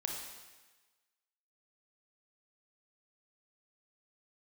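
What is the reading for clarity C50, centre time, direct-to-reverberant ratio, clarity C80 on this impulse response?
2.5 dB, 58 ms, 0.5 dB, 4.5 dB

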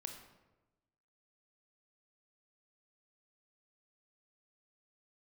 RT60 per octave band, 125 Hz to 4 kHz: 1.3, 1.2, 1.2, 1.0, 0.85, 0.65 seconds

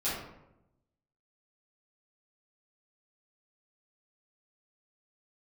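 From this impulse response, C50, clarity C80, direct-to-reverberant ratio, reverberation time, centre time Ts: 0.5 dB, 4.5 dB, −11.5 dB, 0.90 s, 62 ms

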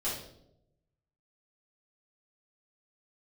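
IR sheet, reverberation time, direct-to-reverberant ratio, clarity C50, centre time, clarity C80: 0.80 s, −10.0 dB, 2.5 dB, 48 ms, 6.5 dB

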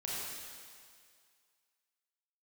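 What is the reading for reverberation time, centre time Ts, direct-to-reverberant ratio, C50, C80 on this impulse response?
2.1 s, 145 ms, −6.5 dB, −3.5 dB, −1.5 dB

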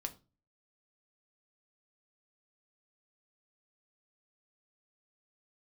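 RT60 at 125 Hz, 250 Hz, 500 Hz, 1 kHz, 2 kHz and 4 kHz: 0.55, 0.45, 0.35, 0.30, 0.25, 0.25 seconds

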